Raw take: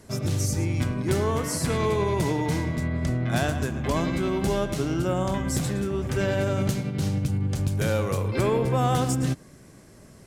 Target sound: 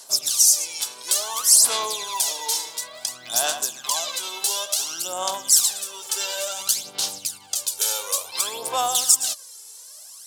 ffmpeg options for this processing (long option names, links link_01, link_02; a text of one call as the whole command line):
ffmpeg -i in.wav -af "highpass=frequency=840:width_type=q:width=1.7,aphaser=in_gain=1:out_gain=1:delay=2.3:decay=0.65:speed=0.57:type=sinusoidal,aexciter=amount=10.9:drive=4.8:freq=3100,volume=-7dB" out.wav